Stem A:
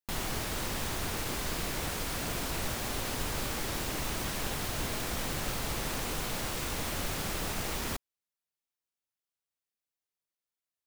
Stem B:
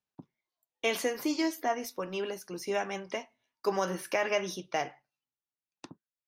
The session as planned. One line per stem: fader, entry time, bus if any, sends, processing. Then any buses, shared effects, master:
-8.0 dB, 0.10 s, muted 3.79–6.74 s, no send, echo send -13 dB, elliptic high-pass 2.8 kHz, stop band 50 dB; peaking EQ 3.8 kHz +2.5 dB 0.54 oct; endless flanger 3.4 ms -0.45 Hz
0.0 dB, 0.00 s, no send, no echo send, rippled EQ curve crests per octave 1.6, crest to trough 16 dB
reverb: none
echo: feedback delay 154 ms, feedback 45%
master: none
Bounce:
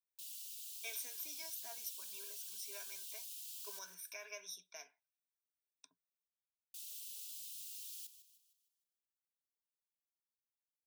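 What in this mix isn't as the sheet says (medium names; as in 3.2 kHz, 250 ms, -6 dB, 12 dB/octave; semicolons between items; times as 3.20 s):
stem B 0.0 dB -> -9.5 dB; master: extra differentiator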